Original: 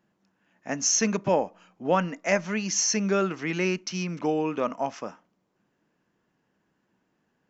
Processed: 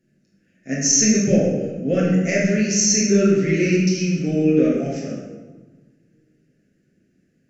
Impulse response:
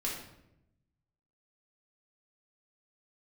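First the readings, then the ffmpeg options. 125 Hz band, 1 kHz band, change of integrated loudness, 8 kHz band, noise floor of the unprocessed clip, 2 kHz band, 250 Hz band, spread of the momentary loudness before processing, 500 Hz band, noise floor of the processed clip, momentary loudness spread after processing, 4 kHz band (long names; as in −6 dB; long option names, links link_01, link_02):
+12.5 dB, −9.0 dB, +8.0 dB, can't be measured, −75 dBFS, +4.5 dB, +11.5 dB, 12 LU, +7.0 dB, −64 dBFS, 10 LU, +6.5 dB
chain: -filter_complex "[0:a]asuperstop=centerf=970:order=4:qfactor=0.67,equalizer=frequency=3300:width_type=o:width=0.74:gain=-10[link_01];[1:a]atrim=start_sample=2205,asetrate=24255,aresample=44100[link_02];[link_01][link_02]afir=irnorm=-1:irlink=0,volume=2.5dB"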